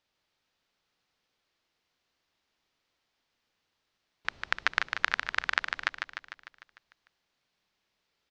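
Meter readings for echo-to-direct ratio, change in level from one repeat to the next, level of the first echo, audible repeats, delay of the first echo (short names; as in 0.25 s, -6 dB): -4.0 dB, -4.5 dB, -6.0 dB, 7, 0.15 s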